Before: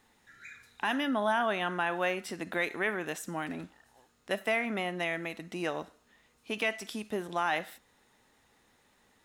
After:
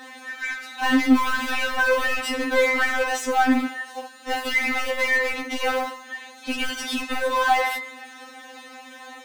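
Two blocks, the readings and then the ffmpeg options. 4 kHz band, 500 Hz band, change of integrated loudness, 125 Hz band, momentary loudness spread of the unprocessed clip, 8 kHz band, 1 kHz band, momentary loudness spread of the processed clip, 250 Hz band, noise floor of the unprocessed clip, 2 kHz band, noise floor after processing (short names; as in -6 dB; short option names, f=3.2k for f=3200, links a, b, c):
+11.0 dB, +8.0 dB, +10.0 dB, n/a, 15 LU, +12.5 dB, +10.0 dB, 20 LU, +12.0 dB, -68 dBFS, +11.5 dB, -44 dBFS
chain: -filter_complex "[0:a]lowshelf=f=82:g=-11,bandreject=f=115:t=h:w=4,bandreject=f=230:t=h:w=4,bandreject=f=345:t=h:w=4,bandreject=f=460:t=h:w=4,bandreject=f=575:t=h:w=4,bandreject=f=690:t=h:w=4,bandreject=f=805:t=h:w=4,bandreject=f=920:t=h:w=4,bandreject=f=1.035k:t=h:w=4,bandreject=f=1.15k:t=h:w=4,bandreject=f=1.265k:t=h:w=4,bandreject=f=1.38k:t=h:w=4,bandreject=f=1.495k:t=h:w=4,bandreject=f=1.61k:t=h:w=4,bandreject=f=1.725k:t=h:w=4,bandreject=f=1.84k:t=h:w=4,bandreject=f=1.955k:t=h:w=4,bandreject=f=2.07k:t=h:w=4,bandreject=f=2.185k:t=h:w=4,bandreject=f=2.3k:t=h:w=4,bandreject=f=2.415k:t=h:w=4,asplit=2[a][b];[b]highpass=f=720:p=1,volume=33dB,asoftclip=type=tanh:threshold=-18dB[c];[a][c]amix=inputs=2:normalize=0,lowpass=f=1.9k:p=1,volume=-6dB,acrossover=split=360|1100[d][e][f];[e]acrusher=bits=4:mode=log:mix=0:aa=0.000001[g];[d][g][f]amix=inputs=3:normalize=0,afftfilt=real='re*3.46*eq(mod(b,12),0)':imag='im*3.46*eq(mod(b,12),0)':win_size=2048:overlap=0.75,volume=6dB"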